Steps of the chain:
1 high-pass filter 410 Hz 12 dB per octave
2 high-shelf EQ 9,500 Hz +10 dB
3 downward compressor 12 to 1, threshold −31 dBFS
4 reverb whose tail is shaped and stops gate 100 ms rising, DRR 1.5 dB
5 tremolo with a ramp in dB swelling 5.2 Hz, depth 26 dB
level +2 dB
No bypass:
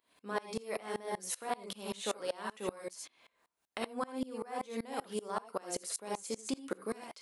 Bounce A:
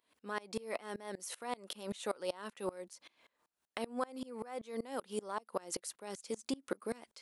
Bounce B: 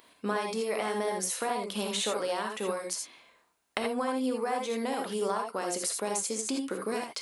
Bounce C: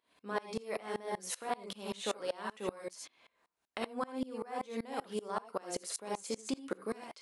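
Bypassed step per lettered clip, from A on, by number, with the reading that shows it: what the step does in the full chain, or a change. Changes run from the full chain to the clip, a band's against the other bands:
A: 4, 8 kHz band −2.5 dB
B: 5, change in crest factor −2.5 dB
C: 2, 8 kHz band −2.0 dB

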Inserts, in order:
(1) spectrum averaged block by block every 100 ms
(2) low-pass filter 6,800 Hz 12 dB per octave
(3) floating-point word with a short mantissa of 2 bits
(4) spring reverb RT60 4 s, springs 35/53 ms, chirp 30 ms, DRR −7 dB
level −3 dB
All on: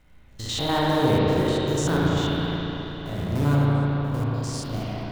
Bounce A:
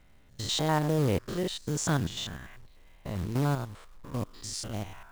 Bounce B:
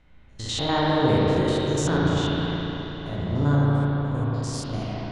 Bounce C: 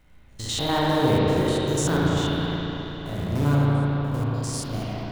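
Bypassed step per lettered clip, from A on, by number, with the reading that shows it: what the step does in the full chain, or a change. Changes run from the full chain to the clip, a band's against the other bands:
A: 4, 8 kHz band +8.0 dB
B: 3, distortion level −20 dB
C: 2, 8 kHz band +3.5 dB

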